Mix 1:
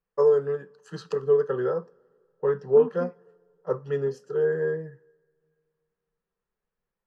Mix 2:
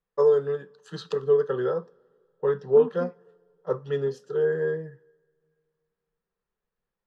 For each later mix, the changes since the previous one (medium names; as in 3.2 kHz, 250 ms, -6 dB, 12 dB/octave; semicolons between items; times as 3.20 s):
first voice: add peaking EQ 3.6 kHz +14.5 dB 0.28 oct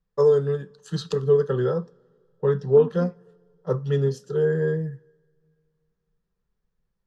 first voice: add tone controls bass +14 dB, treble +10 dB